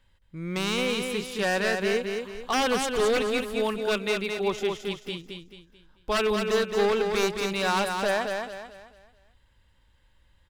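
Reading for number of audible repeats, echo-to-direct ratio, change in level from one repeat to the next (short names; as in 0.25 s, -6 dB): 4, -4.5 dB, -8.5 dB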